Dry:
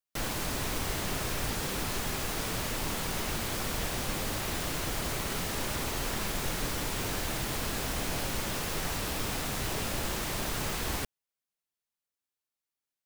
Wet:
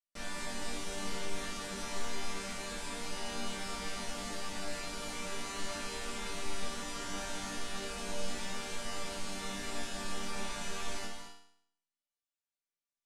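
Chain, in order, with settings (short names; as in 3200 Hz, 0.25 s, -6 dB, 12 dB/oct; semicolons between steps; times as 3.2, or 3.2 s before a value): LPF 9600 Hz 24 dB/oct; resonator bank G3 minor, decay 0.66 s; reverb, pre-delay 3 ms, DRR 6.5 dB; gain +13.5 dB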